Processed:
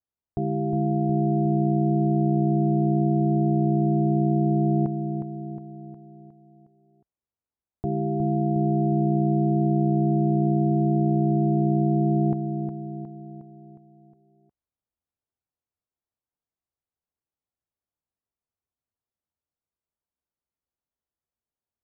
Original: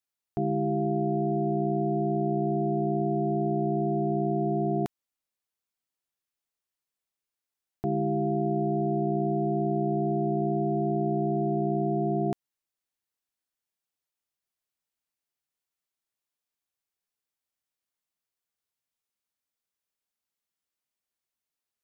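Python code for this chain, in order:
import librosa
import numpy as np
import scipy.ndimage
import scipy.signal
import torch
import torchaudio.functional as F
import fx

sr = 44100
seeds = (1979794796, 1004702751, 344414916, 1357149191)

y = scipy.signal.sosfilt(scipy.signal.butter(2, 1000.0, 'lowpass', fs=sr, output='sos'), x)
y = fx.peak_eq(y, sr, hz=70.0, db=9.0, octaves=1.6)
y = fx.echo_feedback(y, sr, ms=361, feedback_pct=52, wet_db=-7.5)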